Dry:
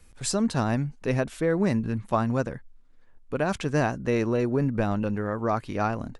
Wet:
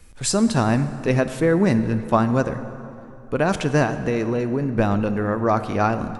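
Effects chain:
0:03.83–0:04.78: downward compressor, threshold −25 dBFS, peak gain reduction 6 dB
dense smooth reverb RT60 3 s, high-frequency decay 0.6×, DRR 10.5 dB
level +6 dB

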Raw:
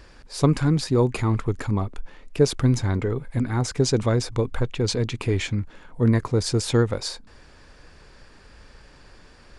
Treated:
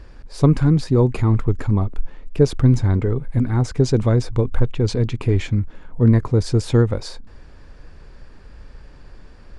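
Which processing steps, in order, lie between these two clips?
spectral tilt −2 dB per octave

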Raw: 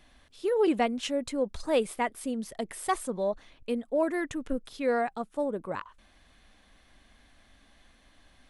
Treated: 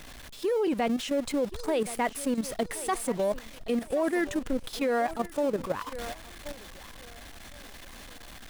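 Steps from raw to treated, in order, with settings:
converter with a step at zero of −37.5 dBFS
feedback echo with a high-pass in the loop 1,074 ms, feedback 42%, high-pass 260 Hz, level −15.5 dB
output level in coarse steps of 10 dB
level +4.5 dB

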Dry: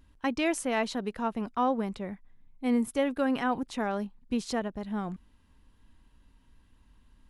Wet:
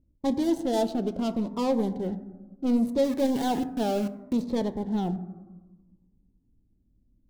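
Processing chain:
running median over 25 samples
low-shelf EQ 140 Hz −9.5 dB
low-pass that shuts in the quiet parts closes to 320 Hz, open at −27.5 dBFS
leveller curve on the samples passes 2
in parallel at −3 dB: soft clipping −32.5 dBFS, distortion −8 dB
on the sum: flat-topped bell 1,700 Hz −9.5 dB
0:03.04–0:04.33: centre clipping without the shift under −33 dBFS
on a send at −10 dB: convolution reverb RT60 1.3 s, pre-delay 4 ms
on the sum: phaser whose notches keep moving one way falling 0.69 Hz

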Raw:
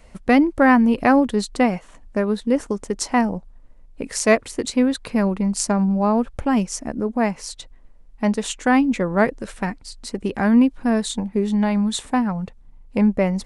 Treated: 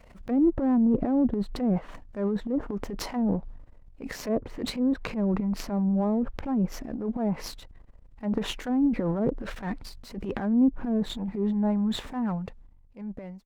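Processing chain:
fade-out on the ending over 1.76 s
treble cut that deepens with the level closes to 450 Hz, closed at −13.5 dBFS
high-shelf EQ 3,400 Hz −6.5 dB
transient designer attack −10 dB, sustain +11 dB
windowed peak hold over 3 samples
level −5.5 dB

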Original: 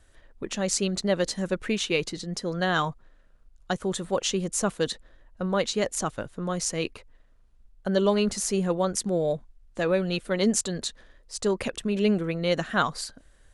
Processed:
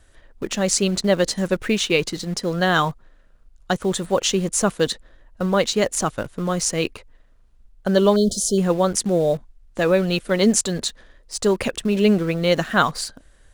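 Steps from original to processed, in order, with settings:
in parallel at −12 dB: bit-depth reduction 6 bits, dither none
0:08.16–0:08.58: on the sum: linear-phase brick-wall band-stop 730–3,000 Hz
level +4.5 dB

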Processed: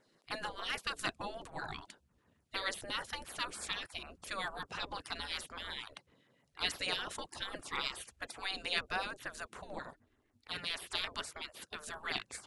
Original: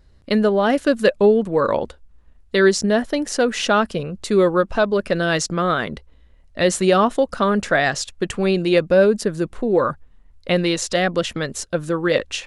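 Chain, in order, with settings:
gate on every frequency bin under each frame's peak −20 dB weak
0:09.75–0:10.70: ring modulation 170 Hz
auto-filter notch saw down 6.7 Hz 450–5,100 Hz
level −4 dB

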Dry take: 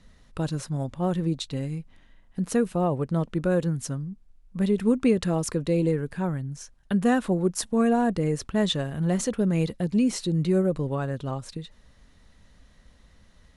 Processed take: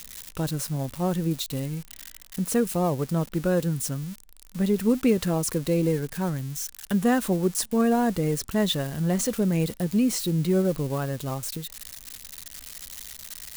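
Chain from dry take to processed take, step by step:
spike at every zero crossing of −27 dBFS

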